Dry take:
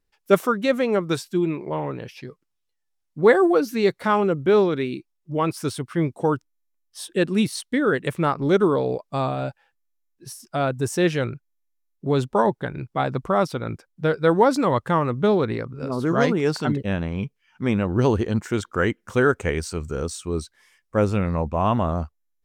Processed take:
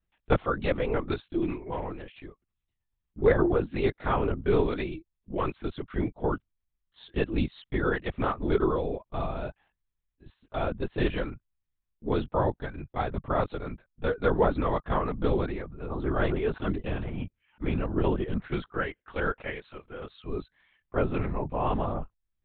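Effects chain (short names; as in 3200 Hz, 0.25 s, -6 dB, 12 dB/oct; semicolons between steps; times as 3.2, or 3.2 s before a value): 18.81–20.18 HPF 530 Hz 12 dB/oct; LPC vocoder at 8 kHz whisper; gain -6.5 dB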